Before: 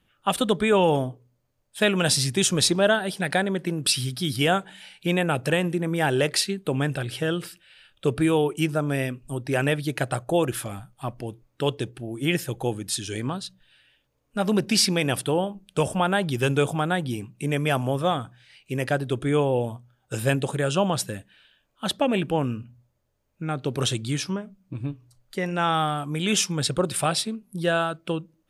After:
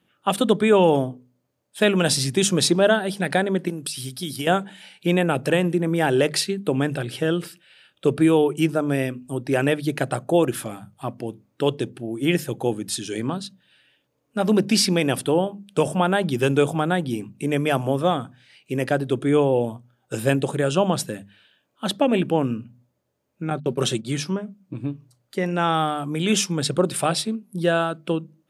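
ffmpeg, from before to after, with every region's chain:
-filter_complex "[0:a]asettb=1/sr,asplit=3[a][b][c];[a]atrim=end=3.684[d];[b]atrim=start=3.68:end=4.47,asetpts=PTS-STARTPTS,afade=t=in:d=0.004:c=qsin,afade=t=out:st=0.786:d=0.004:c=qsin,highshelf=f=4.3k:g=10.5,agate=range=-7dB:threshold=-26dB:ratio=16:release=100:detection=peak,acompressor=threshold=-26dB:ratio=12:attack=3.2:release=140:knee=1:detection=peak[e];[c]atrim=start=4.466[f];[d][e]acrossfade=d=0.004:c1=hsin:c2=qsin[g];[g][f]acrossfade=d=0.004:c1=qsin:c2=hsin,asettb=1/sr,asplit=3[h][i][j];[h]atrim=end=23.504[k];[i]atrim=start=23.5:end=24.17,asetpts=PTS-STARTPTS,afade=t=in:d=0.004:c=qsin,afade=t=out:st=0.666:d=0.004:c=qsin,agate=range=-32dB:threshold=-33dB:ratio=16:release=100:detection=peak,aecho=1:1:5.3:0.37,atrim=end_sample=29547[l];[j]atrim=start=24.166[m];[k][l]acrossfade=d=0.004:c1=hsin:c2=qsin[n];[n][m]acrossfade=d=0.004:c1=qsin:c2=hsin,highpass=190,lowshelf=f=440:g=8.5,bandreject=f=50:t=h:w=6,bandreject=f=100:t=h:w=6,bandreject=f=150:t=h:w=6,bandreject=f=200:t=h:w=6,bandreject=f=250:t=h:w=6"

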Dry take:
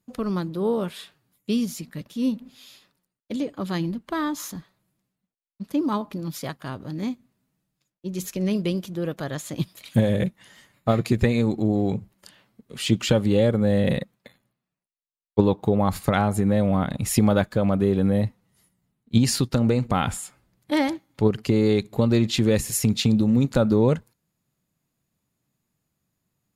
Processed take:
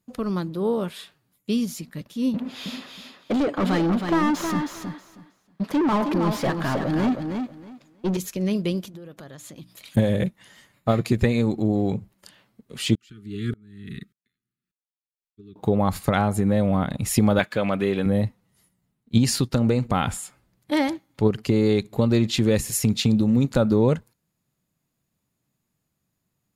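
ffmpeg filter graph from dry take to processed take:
-filter_complex "[0:a]asettb=1/sr,asplit=3[a][b][c];[a]atrim=end=2.344[d];[b]atrim=start=2.34:end=8.17,asetpts=PTS-STARTPTS,afade=t=in:d=0.004:c=qsin,afade=t=out:st=5.826:d=0.004:c=qsin,asplit=2[e][f];[f]highpass=f=720:p=1,volume=30dB,asoftclip=type=tanh:threshold=-14dB[g];[e][g]amix=inputs=2:normalize=0,lowpass=f=1.1k:p=1,volume=-6dB,aecho=1:1:318|636|954:0.501|0.0952|0.0181,atrim=end_sample=257103[h];[c]atrim=start=8.166[i];[d][h]acrossfade=d=0.004:c1=hsin:c2=qsin[j];[j][i]acrossfade=d=0.004:c1=qsin:c2=hsin,asettb=1/sr,asplit=3[k][l][m];[k]atrim=end=8.884[n];[l]atrim=start=8.88:end=9.97,asetpts=PTS-STARTPTS,afade=t=in:d=0.004:c=qsin,afade=t=out:st=1.086:d=0.004:c=qsin,acompressor=threshold=-38dB:ratio=5:attack=3.2:release=140:knee=1:detection=peak,bandreject=f=60:t=h:w=6,bandreject=f=120:t=h:w=6,bandreject=f=180:t=h:w=6,bandreject=f=240:t=h:w=6,bandreject=f=300:t=h:w=6[o];[m]atrim=start=9.966[p];[n][o]acrossfade=d=0.004:c1=hsin:c2=qsin[q];[q][p]acrossfade=d=0.004:c1=qsin:c2=hsin,asettb=1/sr,asplit=3[r][s][t];[r]atrim=end=12.954[u];[s]atrim=start=12.95:end=15.56,asetpts=PTS-STARTPTS,afade=t=in:d=0.004:c=qsin,afade=t=out:st=2.606:d=0.004:c=qsin,asuperstop=centerf=710:order=20:qfactor=0.92,aeval=exprs='val(0)*pow(10,-35*if(lt(mod(-1.7*n/s,1),2*abs(-1.7)/1000),1-mod(-1.7*n/s,1)/(2*abs(-1.7)/1000),(mod(-1.7*n/s,1)-2*abs(-1.7)/1000)/(1-2*abs(-1.7)/1000))/20)':c=same[v];[t]atrim=start=15.556[w];[u][v]acrossfade=d=0.004:c1=hsin:c2=qsin[x];[x][w]acrossfade=d=0.004:c1=qsin:c2=hsin,asettb=1/sr,asplit=3[y][z][aa];[y]atrim=end=17.394[ab];[z]atrim=start=17.39:end=18.06,asetpts=PTS-STARTPTS,afade=t=in:d=0.004:c=qsin,afade=t=out:st=0.666:d=0.004:c=qsin,highpass=f=250:p=1,equalizer=f=2.4k:t=o:w=1.4:g=11[ac];[aa]atrim=start=18.056[ad];[ab][ac]acrossfade=d=0.004:c1=hsin:c2=qsin[ae];[ae][ad]acrossfade=d=0.004:c1=qsin:c2=hsin"

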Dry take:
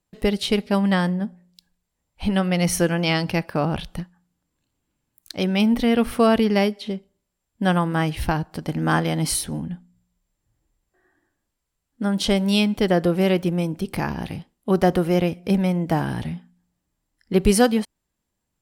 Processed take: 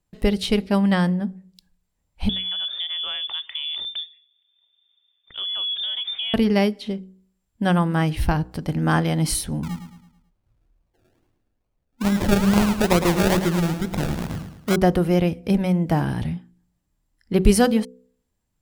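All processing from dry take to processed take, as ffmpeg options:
-filter_complex "[0:a]asettb=1/sr,asplit=3[a][b][c];[a]atrim=end=2.294[d];[b]atrim=start=2.29:end=6.34,asetpts=PTS-STARTPTS,afade=t=in:d=0.004:c=qsin,afade=t=out:st=4.046:d=0.004:c=qsin,aemphasis=mode=reproduction:type=bsi,lowpass=f=3.1k:t=q:w=0.5098,lowpass=f=3.1k:t=q:w=0.6013,lowpass=f=3.1k:t=q:w=0.9,lowpass=f=3.1k:t=q:w=2.563,afreqshift=-3600,acompressor=threshold=-28dB:ratio=3:attack=3.2:release=140:knee=1:detection=peak[e];[c]atrim=start=6.336[f];[d][e]acrossfade=d=0.004:c1=hsin:c2=qsin[g];[g][f]acrossfade=d=0.004:c1=qsin:c2=hsin,asettb=1/sr,asplit=3[h][i][j];[h]atrim=end=9.634[k];[i]atrim=start=9.63:end=14.76,asetpts=PTS-STARTPTS,afade=t=in:d=0.004:c=qsin,afade=t=out:st=5.126:d=0.004:c=qsin,acrusher=samples=34:mix=1:aa=0.000001:lfo=1:lforange=20.4:lforate=2.3,aecho=1:1:109|218|327|436|545:0.355|0.153|0.0656|0.0282|0.0121,atrim=end_sample=226233[l];[j]atrim=start=14.756[m];[k][l]acrossfade=d=0.004:c1=hsin:c2=qsin[n];[n][m]acrossfade=d=0.004:c1=qsin:c2=hsin,lowshelf=f=130:g=9,bandreject=f=62.75:t=h:w=4,bandreject=f=125.5:t=h:w=4,bandreject=f=188.25:t=h:w=4,bandreject=f=251:t=h:w=4,bandreject=f=313.75:t=h:w=4,bandreject=f=376.5:t=h:w=4,bandreject=f=439.25:t=h:w=4,bandreject=f=502:t=h:w=4,volume=-1dB"

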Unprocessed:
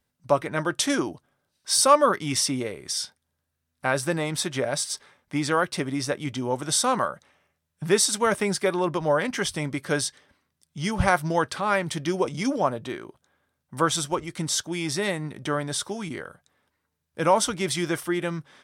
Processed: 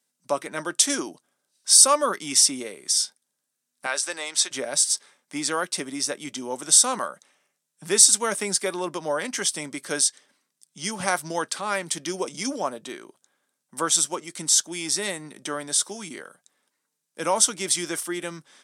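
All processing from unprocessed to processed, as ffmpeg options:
-filter_complex "[0:a]asettb=1/sr,asplit=3[a][b][c];[a]atrim=end=3.864[d];[b]atrim=start=3.86:end=4.51,asetpts=PTS-STARTPTS,afade=t=in:d=0.004:c=qsin,afade=t=out:st=0.646:d=0.004:c=qsin,highpass=470,lowpass=7.1k,tiltshelf=f=1.1k:g=-3.5[e];[c]atrim=start=4.506[f];[d][e]acrossfade=d=0.004:c1=hsin:c2=qsin[g];[g][f]acrossfade=d=0.004:c1=qsin:c2=hsin,highpass=f=190:w=0.5412,highpass=f=190:w=1.3066,equalizer=f=8k:t=o:w=1.7:g=14.5,volume=-4.5dB"

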